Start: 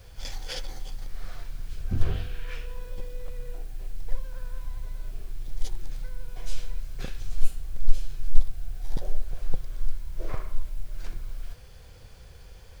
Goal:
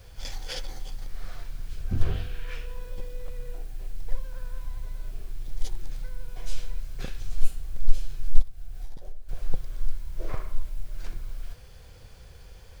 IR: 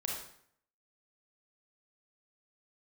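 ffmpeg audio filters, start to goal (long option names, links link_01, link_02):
-filter_complex "[0:a]asettb=1/sr,asplit=3[link_01][link_02][link_03];[link_01]atrim=end=8.414[link_04];[link_02]atrim=start=8.41:end=9.29,asetpts=PTS-STARTPTS,afade=type=in:duration=0.004:curve=qsin,afade=type=out:start_time=0.876:duration=0.004:curve=qsin,acompressor=threshold=-28dB:ratio=16[link_05];[link_03]atrim=start=9.286[link_06];[link_04][link_05]acrossfade=duration=0.004:curve1=hsin:curve2=qsin[link_07];[link_07][link_06]acrossfade=duration=0.004:curve1=qsin:curve2=hsin"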